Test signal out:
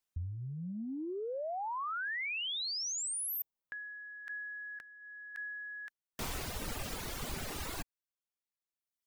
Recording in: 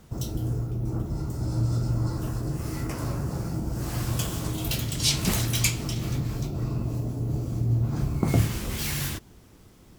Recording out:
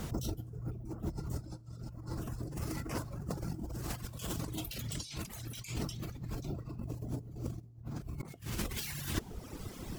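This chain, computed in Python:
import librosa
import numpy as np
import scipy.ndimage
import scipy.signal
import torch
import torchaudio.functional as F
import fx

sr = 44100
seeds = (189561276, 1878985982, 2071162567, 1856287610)

y = fx.over_compress(x, sr, threshold_db=-39.0, ratio=-1.0)
y = fx.dereverb_blind(y, sr, rt60_s=1.4)
y = y * 10.0 ** (1.5 / 20.0)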